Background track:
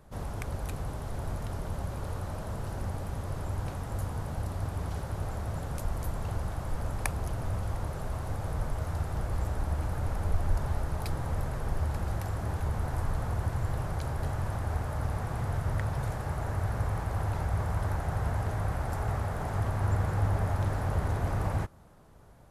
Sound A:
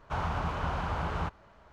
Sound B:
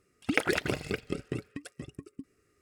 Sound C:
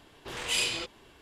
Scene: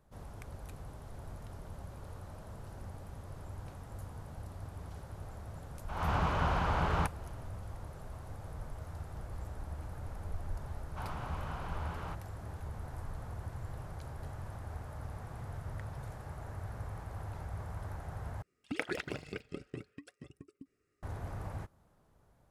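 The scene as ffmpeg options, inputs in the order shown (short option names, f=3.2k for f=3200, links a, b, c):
-filter_complex "[1:a]asplit=2[a][b];[0:a]volume=-11.5dB[c];[a]dynaudnorm=f=160:g=3:m=15dB[d];[2:a]highshelf=f=8.6k:g=-9[e];[c]asplit=2[f][g];[f]atrim=end=18.424[h];[e]atrim=end=2.61,asetpts=PTS-STARTPTS,volume=-9dB[i];[g]atrim=start=21.026[j];[d]atrim=end=1.72,asetpts=PTS-STARTPTS,volume=-13dB,afade=t=in:d=0.004:c=hsin,afade=t=out:st=1.716:d=0.004:c=hsin,adelay=5780[k];[b]atrim=end=1.72,asetpts=PTS-STARTPTS,volume=-9.5dB,afade=t=in:d=0.004:c=hsin,afade=t=out:st=1.716:d=0.004:c=hsin,adelay=10860[l];[h][i]acrossfade=d=0.004:c1=hsin:c2=hsin[m];[m][j]acrossfade=d=0.004:c1=hsin:c2=hsin[n];[n][k][l]amix=inputs=3:normalize=0"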